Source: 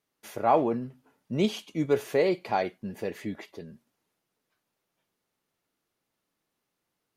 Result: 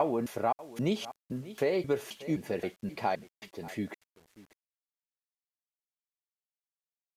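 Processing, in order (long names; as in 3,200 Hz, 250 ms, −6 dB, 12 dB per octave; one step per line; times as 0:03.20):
slices reordered back to front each 263 ms, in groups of 3
single-tap delay 589 ms −21 dB
downward compressor 3 to 1, threshold −26 dBFS, peak gain reduction 7 dB
bit-depth reduction 10 bits, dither none
downsampling to 32,000 Hz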